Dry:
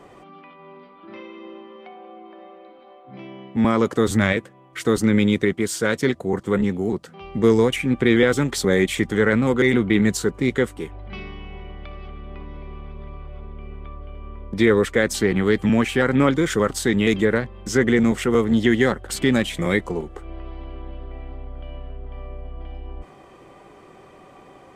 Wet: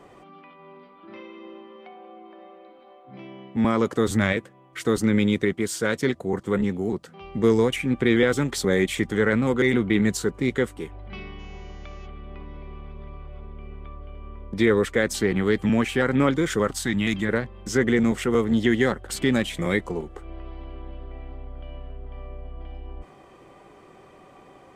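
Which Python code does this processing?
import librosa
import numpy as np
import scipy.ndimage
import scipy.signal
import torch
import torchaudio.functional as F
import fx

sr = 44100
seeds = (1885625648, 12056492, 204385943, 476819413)

y = fx.dmg_buzz(x, sr, base_hz=400.0, harmonics=17, level_db=-58.0, tilt_db=-1, odd_only=False, at=(11.38, 12.05), fade=0.02)
y = fx.peak_eq(y, sr, hz=440.0, db=-15.0, octaves=0.49, at=(16.72, 17.29))
y = y * 10.0 ** (-3.0 / 20.0)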